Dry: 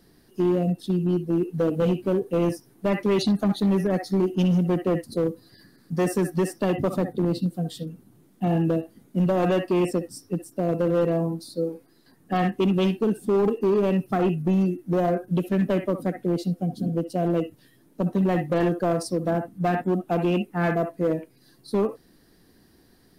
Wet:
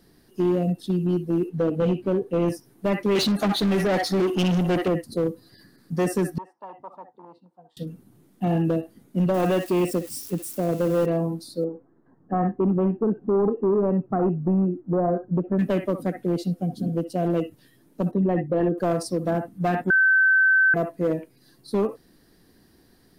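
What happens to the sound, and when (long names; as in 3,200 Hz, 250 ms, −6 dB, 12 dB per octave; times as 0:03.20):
0:01.49–0:02.48: low-pass filter 3,600 Hz 6 dB per octave
0:03.15–0:04.88: mid-hump overdrive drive 22 dB, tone 5,600 Hz, clips at −16 dBFS
0:06.38–0:07.77: resonant band-pass 920 Hz, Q 7.8
0:09.34–0:11.06: spike at every zero crossing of −31.5 dBFS
0:11.64–0:15.59: low-pass filter 1,300 Hz 24 dB per octave
0:18.11–0:18.78: spectral envelope exaggerated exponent 1.5
0:19.90–0:20.74: beep over 1,540 Hz −14.5 dBFS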